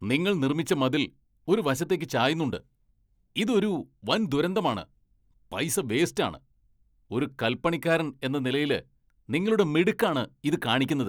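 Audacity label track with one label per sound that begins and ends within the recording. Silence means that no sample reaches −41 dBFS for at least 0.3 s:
1.480000	2.600000	sound
3.360000	4.830000	sound
5.520000	6.370000	sound
7.110000	8.810000	sound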